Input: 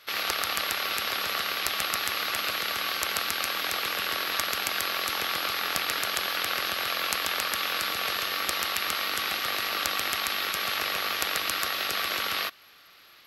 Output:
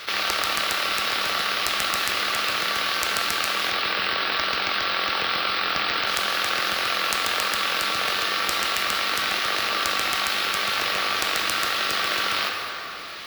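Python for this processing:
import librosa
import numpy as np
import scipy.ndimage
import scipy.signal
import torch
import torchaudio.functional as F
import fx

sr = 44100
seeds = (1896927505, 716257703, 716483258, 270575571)

y = fx.steep_lowpass(x, sr, hz=5200.0, slope=36, at=(3.7, 6.07))
y = fx.rev_plate(y, sr, seeds[0], rt60_s=1.9, hf_ratio=0.7, predelay_ms=0, drr_db=5.0)
y = np.repeat(scipy.signal.resample_poly(y, 1, 2), 2)[:len(y)]
y = fx.env_flatten(y, sr, amount_pct=50)
y = y * 10.0 ** (2.5 / 20.0)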